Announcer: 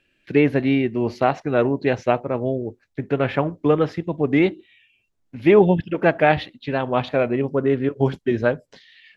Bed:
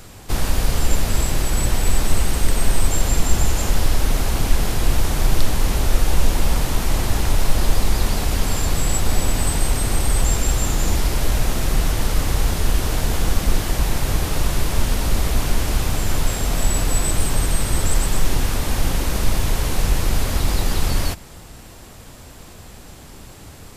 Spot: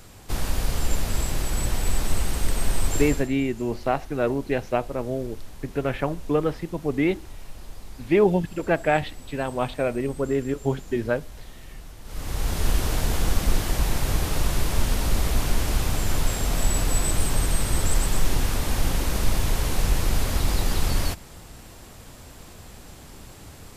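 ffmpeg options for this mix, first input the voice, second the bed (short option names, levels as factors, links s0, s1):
-filter_complex "[0:a]adelay=2650,volume=0.562[s0];[1:a]volume=4.73,afade=t=out:st=3.01:d=0.28:silence=0.141254,afade=t=in:st=12.04:d=0.63:silence=0.105925[s1];[s0][s1]amix=inputs=2:normalize=0"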